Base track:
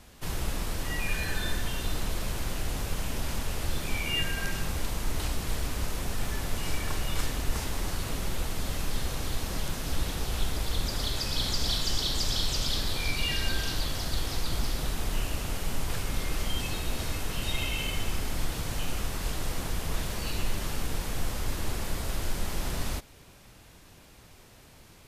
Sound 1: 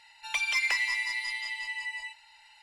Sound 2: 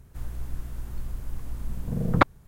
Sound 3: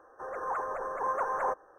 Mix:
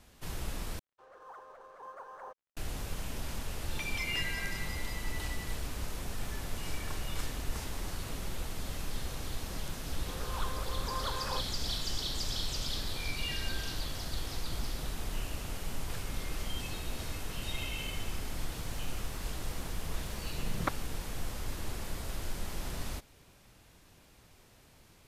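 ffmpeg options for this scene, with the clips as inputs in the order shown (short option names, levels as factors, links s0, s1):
-filter_complex "[3:a]asplit=2[s0][s1];[0:a]volume=0.473[s2];[s0]aeval=exprs='sgn(val(0))*max(abs(val(0))-0.00299,0)':c=same[s3];[s1]equalizer=f=700:w=2.8:g=-8[s4];[s2]asplit=2[s5][s6];[s5]atrim=end=0.794[s7];[s3]atrim=end=1.78,asetpts=PTS-STARTPTS,volume=0.158[s8];[s6]atrim=start=2.566[s9];[1:a]atrim=end=2.62,asetpts=PTS-STARTPTS,volume=0.282,afade=t=in:d=0.004:c=hsin,afade=t=out:st=2.616:d=0.004:c=hsin,adelay=152145S[s10];[s4]atrim=end=1.78,asetpts=PTS-STARTPTS,volume=0.473,afade=t=in:d=0.004:c=hsin,afade=t=out:st=1.776:d=0.004:c=hsin,adelay=9870[s11];[2:a]atrim=end=2.47,asetpts=PTS-STARTPTS,volume=0.2,afade=t=in:d=0.004:c=hsin,afade=t=out:st=2.466:d=0.004:c=hsin,adelay=18460[s12];[s7][s8]acrossfade=d=0.004:c1=hsin:c2=hsin[s13];[s13][s9]acrossfade=d=0.004:c1=hsin:c2=hsin[s14];[s14][s10][s11][s12]amix=inputs=4:normalize=0"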